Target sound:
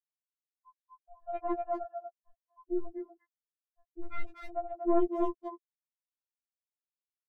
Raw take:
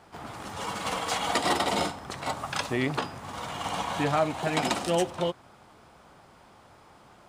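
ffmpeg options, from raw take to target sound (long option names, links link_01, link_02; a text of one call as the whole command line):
ffmpeg -i in.wav -filter_complex "[0:a]afftfilt=real='re*gte(hypot(re,im),0.251)':imag='im*gte(hypot(re,im),0.251)':win_size=1024:overlap=0.75,lowpass=frequency=1900:poles=1,adynamicequalizer=threshold=0.00501:dfrequency=810:dqfactor=3.1:tfrequency=810:tqfactor=3.1:attack=5:release=100:ratio=0.375:range=2.5:mode=cutabove:tftype=bell,dynaudnorm=framelen=210:gausssize=11:maxgain=3dB,aeval=exprs='(tanh(8.91*val(0)+0.7)-tanh(0.7))/8.91':channel_layout=same,asplit=2[link_01][link_02];[link_02]adelay=240,highpass=300,lowpass=3400,asoftclip=type=hard:threshold=-24dB,volume=-6dB[link_03];[link_01][link_03]amix=inputs=2:normalize=0,afftfilt=real='re*4*eq(mod(b,16),0)':imag='im*4*eq(mod(b,16),0)':win_size=2048:overlap=0.75,volume=1.5dB" out.wav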